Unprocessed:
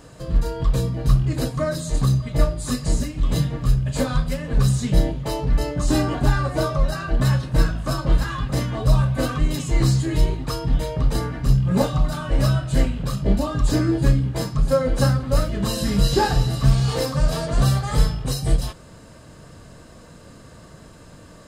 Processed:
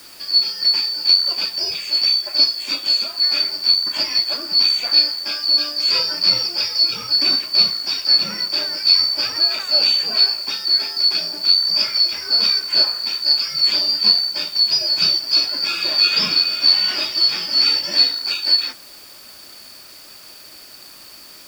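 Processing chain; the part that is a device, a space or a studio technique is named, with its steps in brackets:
split-band scrambled radio (band-splitting scrambler in four parts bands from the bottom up 2341; band-pass filter 300–3,200 Hz; white noise bed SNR 26 dB)
level +8 dB

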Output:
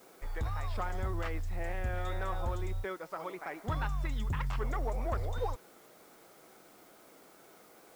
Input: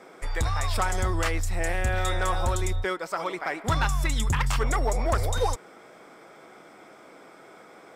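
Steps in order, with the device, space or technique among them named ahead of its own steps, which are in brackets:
cassette deck with a dirty head (head-to-tape spacing loss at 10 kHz 23 dB; tape wow and flutter; white noise bed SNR 28 dB)
level −8 dB

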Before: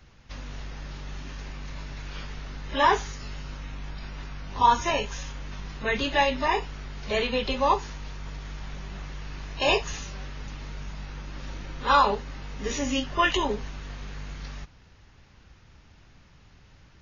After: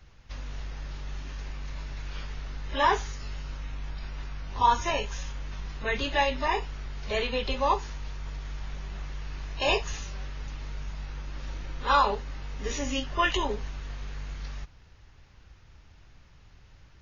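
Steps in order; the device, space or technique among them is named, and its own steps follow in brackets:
low shelf boost with a cut just above (low-shelf EQ 78 Hz +6 dB; parametric band 210 Hz −4.5 dB 0.96 octaves)
level −2.5 dB

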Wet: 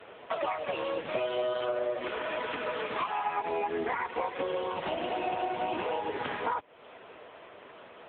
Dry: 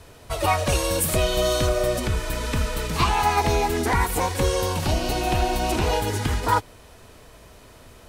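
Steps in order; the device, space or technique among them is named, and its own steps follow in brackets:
0:01.53–0:03.41: high-pass filter 340 Hz → 150 Hz 24 dB per octave
voicemail (band-pass filter 360–3,300 Hz; downward compressor 10 to 1, threshold −32 dBFS, peak gain reduction 16.5 dB; level +5.5 dB; AMR narrowband 6.7 kbit/s 8,000 Hz)

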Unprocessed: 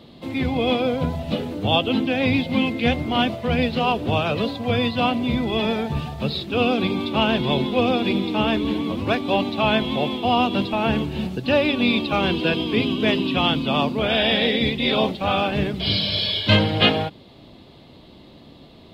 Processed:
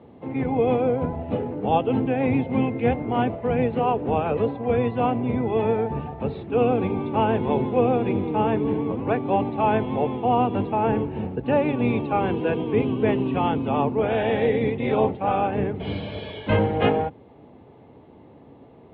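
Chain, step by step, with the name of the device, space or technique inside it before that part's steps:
sub-octave bass pedal (sub-octave generator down 1 octave, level −1 dB; loudspeaker in its box 84–2,200 Hz, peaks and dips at 270 Hz +4 dB, 450 Hz +10 dB, 840 Hz +9 dB)
level −5.5 dB

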